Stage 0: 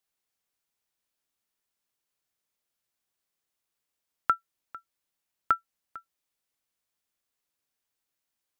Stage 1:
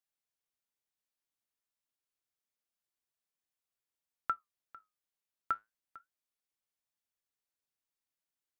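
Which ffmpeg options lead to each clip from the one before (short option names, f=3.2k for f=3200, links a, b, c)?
-af "flanger=delay=1.1:depth=9.5:regen=-74:speed=0.29:shape=sinusoidal,volume=-5dB"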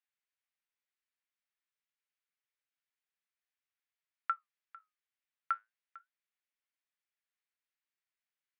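-af "bandpass=f=2k:t=q:w=1.5:csg=0,volume=4dB"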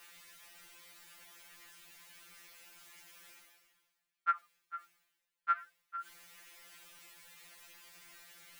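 -af "areverse,acompressor=mode=upward:threshold=-37dB:ratio=2.5,areverse,afftfilt=real='re*2.83*eq(mod(b,8),0)':imag='im*2.83*eq(mod(b,8),0)':win_size=2048:overlap=0.75,volume=7dB"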